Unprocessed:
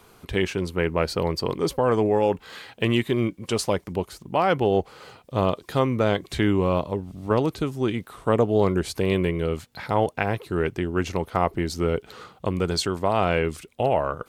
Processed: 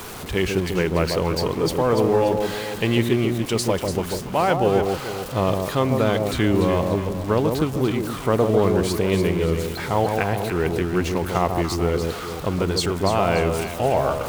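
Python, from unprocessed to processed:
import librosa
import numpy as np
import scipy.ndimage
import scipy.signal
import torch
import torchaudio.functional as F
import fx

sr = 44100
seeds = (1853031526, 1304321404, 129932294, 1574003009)

p1 = x + 0.5 * 10.0 ** (-30.5 / 20.0) * np.sign(x)
y = p1 + fx.echo_alternate(p1, sr, ms=145, hz=1000.0, feedback_pct=64, wet_db=-4, dry=0)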